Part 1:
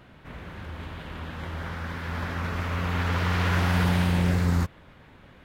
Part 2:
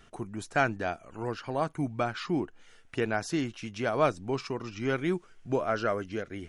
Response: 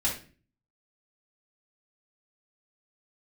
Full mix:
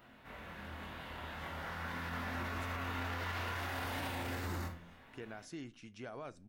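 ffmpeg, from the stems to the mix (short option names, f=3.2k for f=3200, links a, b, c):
-filter_complex "[0:a]highshelf=f=4.4k:g=-12,flanger=delay=22.5:depth=3.6:speed=0.37,aemphasis=mode=production:type=bsi,volume=-4.5dB,asplit=2[a][b];[b]volume=-10dB[c];[1:a]alimiter=limit=-21.5dB:level=0:latency=1:release=123,adelay=2200,volume=-15dB,asplit=2[d][e];[e]volume=-23.5dB[f];[2:a]atrim=start_sample=2205[g];[c][f]amix=inputs=2:normalize=0[h];[h][g]afir=irnorm=-1:irlink=0[i];[a][d][i]amix=inputs=3:normalize=0,alimiter=level_in=7dB:limit=-24dB:level=0:latency=1:release=40,volume=-7dB"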